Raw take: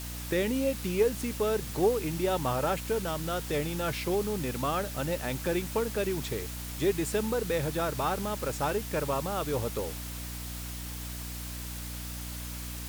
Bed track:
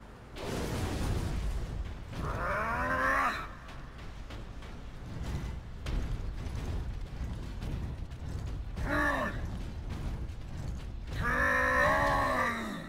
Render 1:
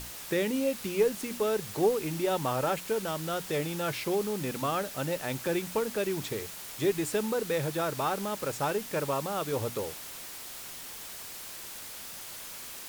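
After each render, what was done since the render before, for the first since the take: notches 60/120/180/240/300 Hz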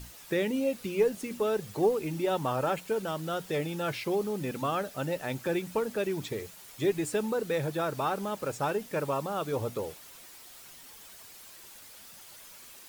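denoiser 9 dB, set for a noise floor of -43 dBFS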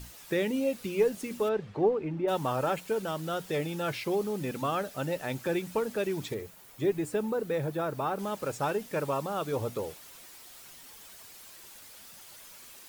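1.48–2.27 LPF 3100 Hz -> 1500 Hz; 6.34–8.19 bell 5700 Hz -7.5 dB 3 oct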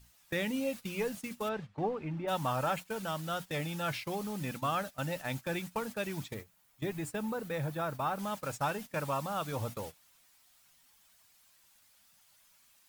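gate -36 dBFS, range -15 dB; bell 400 Hz -12 dB 0.83 oct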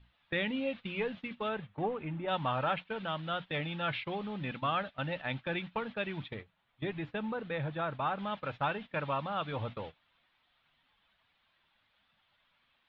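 elliptic low-pass 3600 Hz, stop band 60 dB; dynamic EQ 2700 Hz, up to +4 dB, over -53 dBFS, Q 0.93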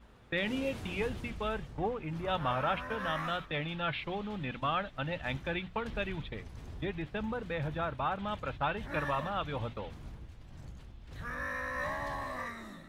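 add bed track -9.5 dB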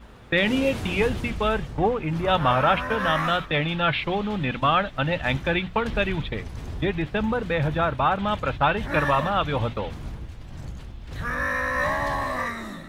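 gain +11.5 dB

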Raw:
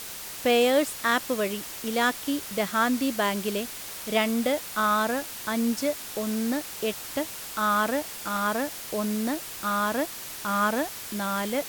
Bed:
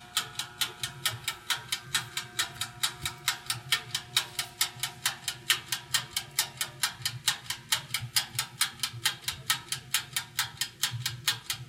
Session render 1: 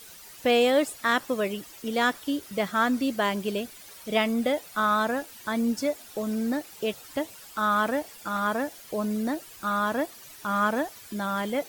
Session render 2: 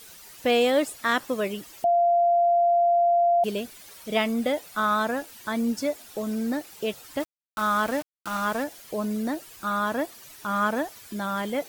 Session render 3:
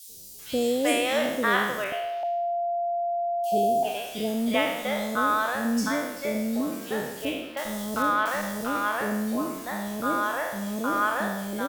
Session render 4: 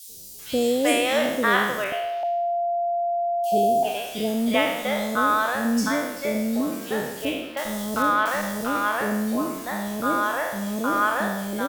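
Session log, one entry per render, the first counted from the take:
denoiser 12 dB, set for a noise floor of -39 dBFS
1.84–3.44 bleep 692 Hz -17 dBFS; 7.2–8.64 sample gate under -33 dBFS
spectral trails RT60 0.93 s; three bands offset in time highs, lows, mids 80/390 ms, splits 550/3900 Hz
gain +3 dB

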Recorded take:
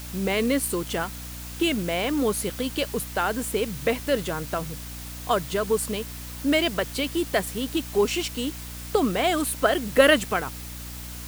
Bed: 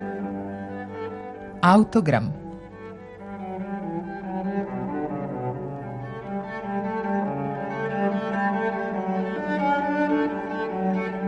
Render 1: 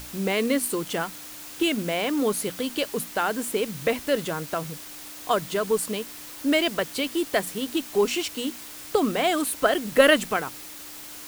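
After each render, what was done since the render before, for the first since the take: notches 60/120/180/240 Hz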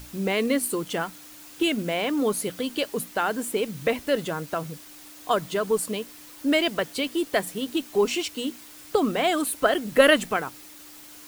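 denoiser 6 dB, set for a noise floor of -41 dBFS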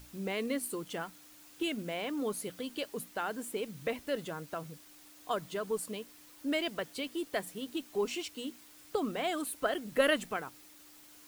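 gain -10.5 dB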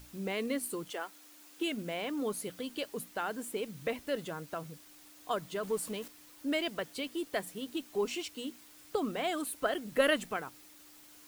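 0.9–1.7 HPF 370 Hz -> 160 Hz 24 dB/oct; 5.63–6.08 zero-crossing step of -46 dBFS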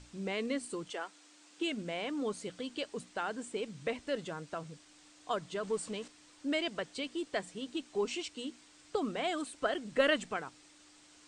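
elliptic low-pass 8500 Hz, stop band 40 dB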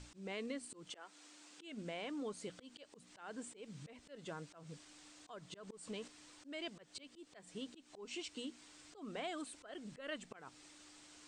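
compressor 2.5:1, threshold -44 dBFS, peak gain reduction 14.5 dB; auto swell 0.18 s

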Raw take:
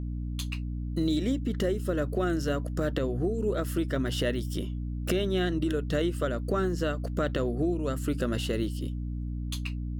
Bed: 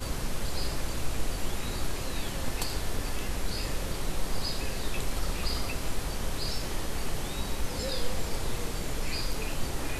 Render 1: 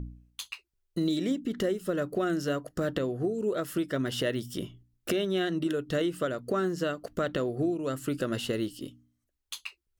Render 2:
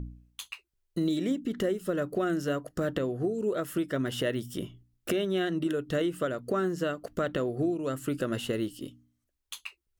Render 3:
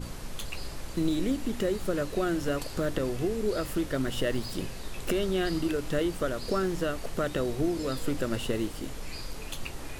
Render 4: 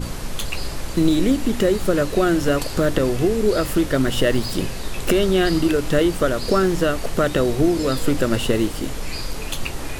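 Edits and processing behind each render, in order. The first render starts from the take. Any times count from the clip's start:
de-hum 60 Hz, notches 5
dynamic EQ 4700 Hz, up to -6 dB, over -54 dBFS, Q 1.8
add bed -7 dB
gain +10.5 dB

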